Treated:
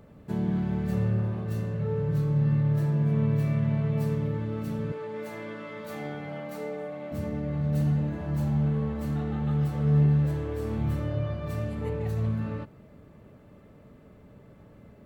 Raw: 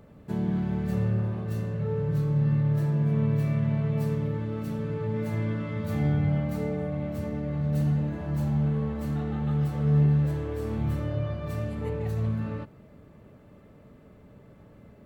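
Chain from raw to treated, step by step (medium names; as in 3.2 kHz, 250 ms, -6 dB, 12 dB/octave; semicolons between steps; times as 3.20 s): 4.92–7.12 s: high-pass 390 Hz 12 dB/octave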